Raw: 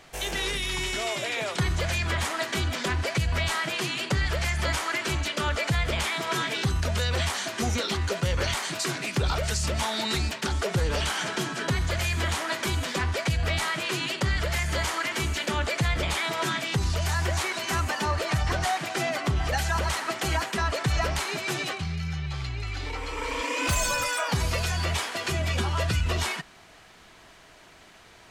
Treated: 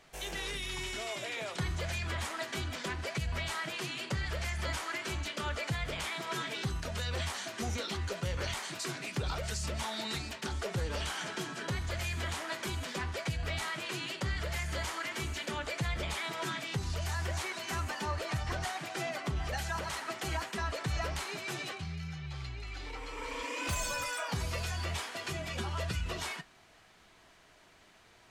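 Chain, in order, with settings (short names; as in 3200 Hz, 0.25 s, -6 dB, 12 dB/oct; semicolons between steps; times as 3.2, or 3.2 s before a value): flange 0.31 Hz, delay 4.5 ms, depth 7.3 ms, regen -67%; gain -4.5 dB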